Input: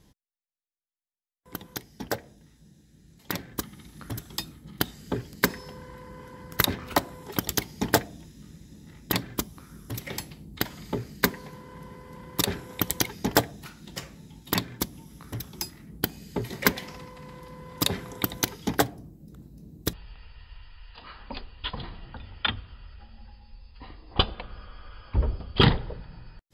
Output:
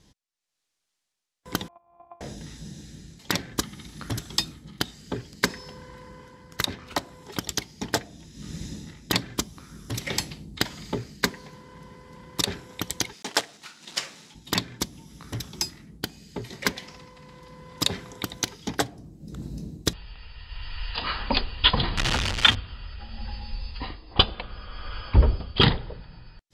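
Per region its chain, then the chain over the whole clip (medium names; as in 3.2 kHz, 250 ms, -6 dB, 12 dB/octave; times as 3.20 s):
1.68–2.21 s: sorted samples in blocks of 128 samples + compression 4:1, threshold -48 dBFS + cascade formant filter a
13.13–14.35 s: block-companded coder 3-bit + frequency weighting A
21.97–22.55 s: jump at every zero crossing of -26.5 dBFS + low-pass 1.8 kHz 6 dB/octave + tilt shelf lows -6.5 dB, about 1.4 kHz
whole clip: treble shelf 4 kHz +11.5 dB; level rider gain up to 16 dB; low-pass 6 kHz 12 dB/octave; trim -1 dB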